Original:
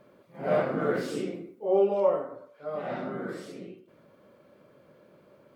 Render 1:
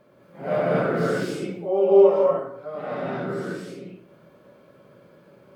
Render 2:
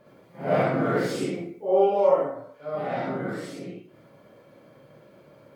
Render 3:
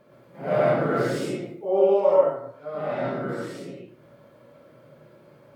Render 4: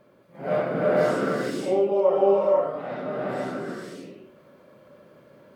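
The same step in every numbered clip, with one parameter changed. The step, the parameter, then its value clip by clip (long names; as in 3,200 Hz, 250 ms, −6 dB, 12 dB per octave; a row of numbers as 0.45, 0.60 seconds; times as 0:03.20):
reverb whose tail is shaped and stops, gate: 260, 90, 160, 540 milliseconds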